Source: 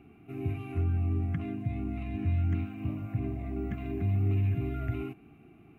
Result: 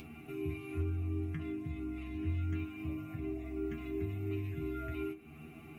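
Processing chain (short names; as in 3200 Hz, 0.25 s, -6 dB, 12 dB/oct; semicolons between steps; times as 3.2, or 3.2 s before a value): high shelf 2400 Hz +10.5 dB; upward compressor, threshold -31 dBFS; metallic resonator 77 Hz, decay 0.28 s, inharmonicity 0.002; gain +1 dB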